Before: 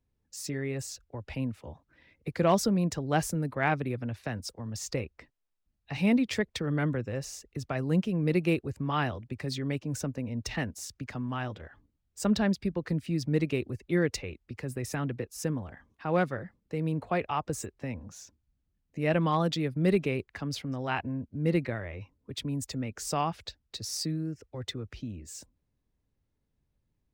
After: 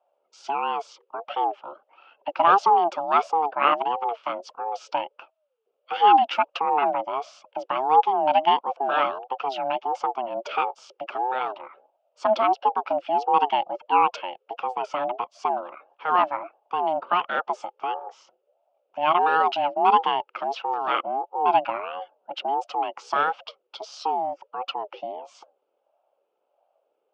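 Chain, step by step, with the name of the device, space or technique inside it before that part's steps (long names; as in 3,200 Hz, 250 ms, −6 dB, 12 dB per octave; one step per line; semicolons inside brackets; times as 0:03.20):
voice changer toy (ring modulator whose carrier an LFO sweeps 540 Hz, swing 20%, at 1.5 Hz; loudspeaker in its box 520–4,200 Hz, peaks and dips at 590 Hz +4 dB, 840 Hz +8 dB, 1,300 Hz +8 dB, 1,900 Hz −9 dB, 2,800 Hz +7 dB, 4,100 Hz −8 dB)
level +7 dB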